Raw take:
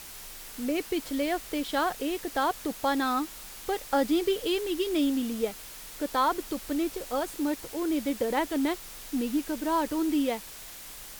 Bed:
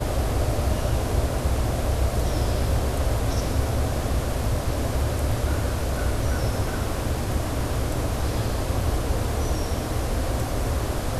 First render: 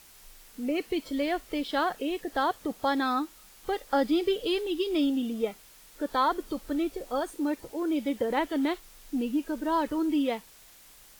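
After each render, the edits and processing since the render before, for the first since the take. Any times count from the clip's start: noise print and reduce 10 dB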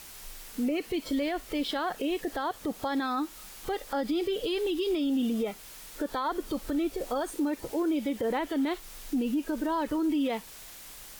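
in parallel at +2.5 dB: compression, threshold -35 dBFS, peak gain reduction 14 dB; on the sum: peak limiter -22 dBFS, peak gain reduction 10 dB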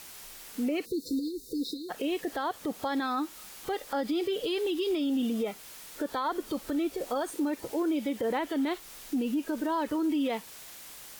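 high-pass 130 Hz 6 dB/octave; 0.85–1.90 s: spectral selection erased 530–3600 Hz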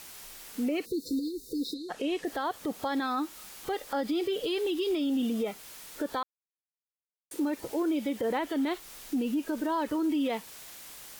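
1.74–2.25 s: low-pass 9 kHz; 6.23–7.31 s: mute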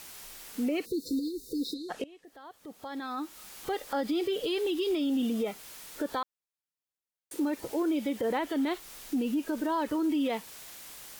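2.04–3.59 s: fade in quadratic, from -22 dB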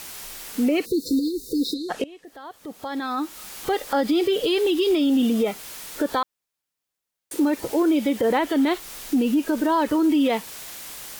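trim +9 dB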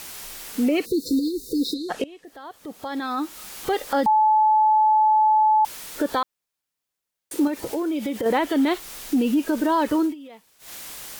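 4.06–5.65 s: bleep 863 Hz -14 dBFS; 7.47–8.26 s: compression 4:1, threshold -23 dBFS; 10.01–10.73 s: dip -21.5 dB, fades 0.14 s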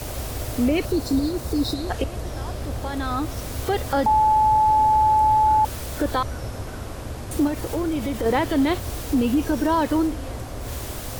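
add bed -7 dB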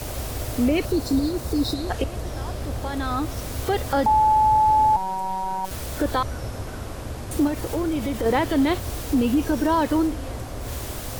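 2.06–2.72 s: block-companded coder 7-bit; 4.96–5.71 s: robot voice 189 Hz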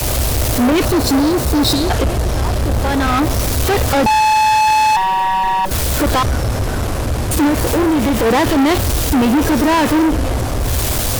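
waveshaping leveller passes 5; three bands expanded up and down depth 40%

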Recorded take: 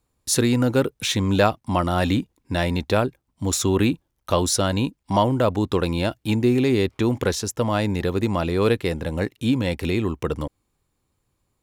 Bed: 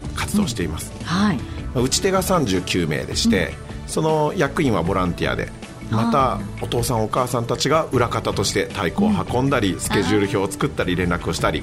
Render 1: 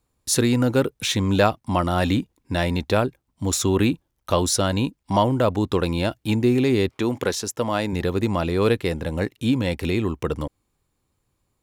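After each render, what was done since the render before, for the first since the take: 6.90–7.93 s: high-pass 210 Hz 6 dB/octave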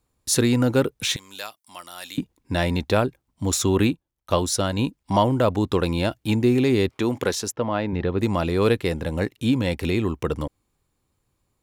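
1.16–2.18 s: differentiator; 3.87–4.79 s: upward expansion, over -37 dBFS; 7.52–8.19 s: distance through air 290 m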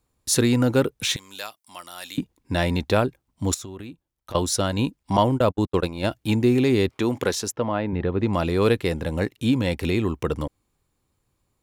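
3.54–4.35 s: compression 16:1, threshold -33 dBFS; 5.17–6.04 s: gate -23 dBFS, range -57 dB; 7.72–8.33 s: distance through air 190 m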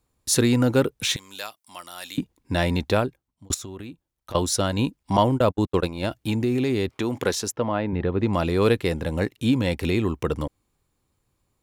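2.88–3.50 s: fade out; 5.90–7.25 s: compression 2.5:1, threshold -21 dBFS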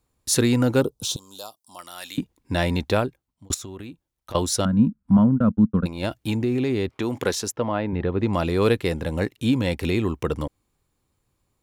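0.81–1.79 s: Butterworth band-stop 2 kHz, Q 0.73; 4.65–5.86 s: FFT filter 120 Hz 0 dB, 220 Hz +13 dB, 350 Hz -12 dB, 510 Hz -8 dB, 860 Hz -14 dB, 1.4 kHz -1 dB, 2 kHz -17 dB, 5 kHz -29 dB, 10 kHz -19 dB, 15 kHz -28 dB; 6.37–7.02 s: treble shelf 4.9 kHz -7.5 dB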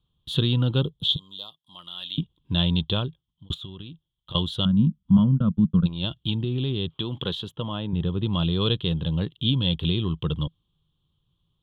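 FFT filter 110 Hz 0 dB, 160 Hz +8 dB, 240 Hz -8 dB, 350 Hz -7 dB, 720 Hz -13 dB, 1.1 kHz -5 dB, 2.2 kHz -19 dB, 3.3 kHz +15 dB, 5.4 kHz -30 dB, 15 kHz -22 dB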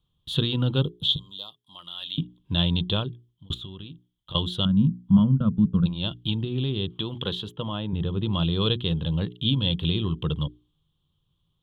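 hum notches 60/120/180/240/300/360/420 Hz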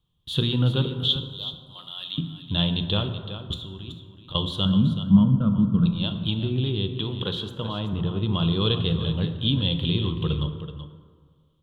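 delay 378 ms -11 dB; plate-style reverb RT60 1.8 s, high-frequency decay 0.45×, DRR 7.5 dB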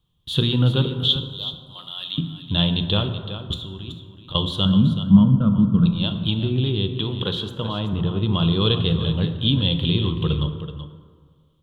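trim +3.5 dB

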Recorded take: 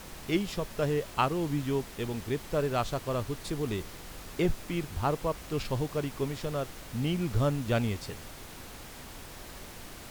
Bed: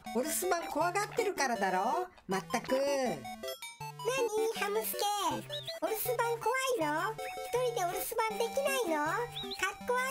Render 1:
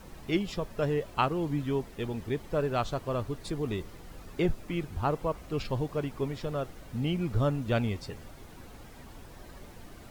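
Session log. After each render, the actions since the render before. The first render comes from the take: noise reduction 10 dB, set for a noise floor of -46 dBFS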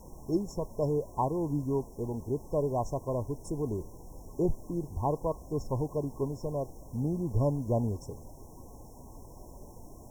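peaking EQ 190 Hz -3.5 dB 0.31 oct; FFT band-reject 1.1–5.3 kHz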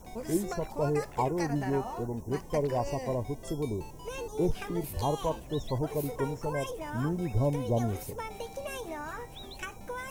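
add bed -7 dB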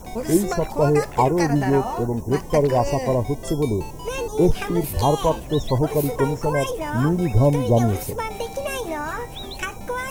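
trim +11 dB

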